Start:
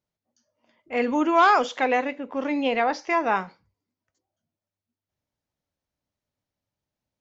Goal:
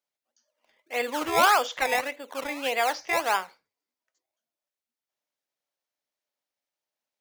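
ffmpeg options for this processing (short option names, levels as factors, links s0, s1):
-filter_complex "[0:a]highpass=570,acrossover=split=1000[s0][s1];[s0]acrusher=samples=21:mix=1:aa=0.000001:lfo=1:lforange=21:lforate=1.7[s2];[s2][s1]amix=inputs=2:normalize=0"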